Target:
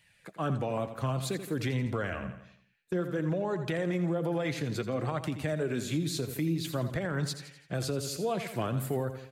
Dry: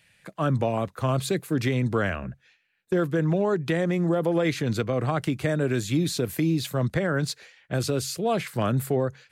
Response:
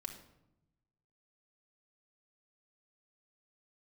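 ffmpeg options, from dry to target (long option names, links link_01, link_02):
-af "flanger=delay=1:depth=6.4:regen=53:speed=0.56:shape=sinusoidal,aecho=1:1:84|168|252|336|420:0.266|0.128|0.0613|0.0294|0.0141,alimiter=limit=-22dB:level=0:latency=1:release=178"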